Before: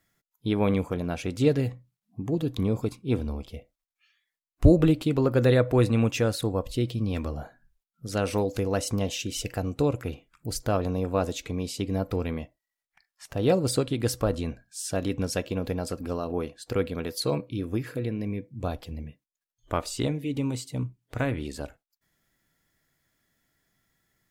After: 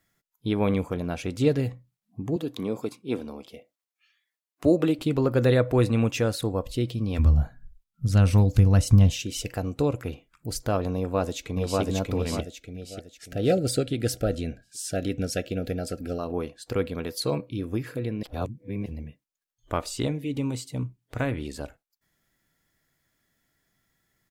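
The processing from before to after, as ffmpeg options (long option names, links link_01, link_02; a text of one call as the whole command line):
ffmpeg -i in.wav -filter_complex "[0:a]asettb=1/sr,asplit=3[link_01][link_02][link_03];[link_01]atrim=end=2.364[link_04];[link_02]atrim=start=2.36:end=4.99,asetpts=PTS-STARTPTS,afade=type=in:duration=0.004:curve=qsin,afade=type=out:start_time=2.626:duration=0.004:curve=qsin,highpass=240[link_05];[link_03]atrim=start=4.986[link_06];[link_04][link_05]acrossfade=duration=0.004:curve1=hsin:curve2=qsin[link_07];[link_07][link_06]acrossfade=duration=0.004:curve1=qsin:curve2=hsin,asplit=3[link_08][link_09][link_10];[link_08]afade=type=out:start_time=7.18:duration=0.02[link_11];[link_09]asubboost=boost=10:cutoff=130,afade=type=in:start_time=7.18:duration=0.02,afade=type=out:start_time=9.21:duration=0.02[link_12];[link_10]afade=type=in:start_time=9.21:duration=0.02[link_13];[link_11][link_12][link_13]amix=inputs=3:normalize=0,asplit=2[link_14][link_15];[link_15]afade=type=in:start_time=10.97:duration=0.01,afade=type=out:start_time=11.81:duration=0.01,aecho=0:1:590|1180|1770|2360|2950:0.944061|0.377624|0.15105|0.0604199|0.024168[link_16];[link_14][link_16]amix=inputs=2:normalize=0,asettb=1/sr,asplit=3[link_17][link_18][link_19];[link_17]atrim=end=12.414[link_20];[link_18]atrim=start=12.41:end=16.19,asetpts=PTS-STARTPTS,afade=type=in:duration=0.004:curve=qsin,afade=type=out:start_time=3.776:duration=0.004:curve=qsin,asuperstop=centerf=1000:order=12:qfactor=2[link_21];[link_19]atrim=start=16.186[link_22];[link_20][link_21]acrossfade=duration=0.004:curve1=hsin:curve2=qsin[link_23];[link_23][link_22]acrossfade=duration=0.004:curve1=qsin:curve2=hsin,asplit=3[link_24][link_25][link_26];[link_24]atrim=end=18.232[link_27];[link_25]atrim=start=18.228:end=18.862,asetpts=PTS-STARTPTS,areverse[link_28];[link_26]atrim=start=18.858[link_29];[link_27][link_28]acrossfade=duration=0.004:curve1=hsin:curve2=hsin[link_30];[link_30][link_29]acrossfade=duration=0.004:curve1=hsin:curve2=hsin" out.wav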